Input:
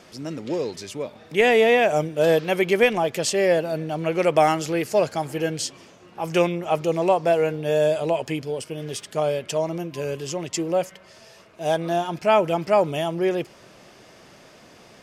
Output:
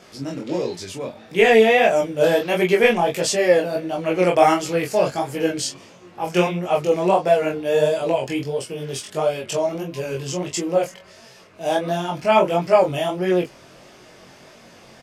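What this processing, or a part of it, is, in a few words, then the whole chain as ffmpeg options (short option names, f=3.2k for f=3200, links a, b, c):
double-tracked vocal: -filter_complex "[0:a]asplit=2[a][b];[b]adelay=22,volume=-3.5dB[c];[a][c]amix=inputs=2:normalize=0,flanger=delay=16.5:depth=6.8:speed=1.5,volume=4dB"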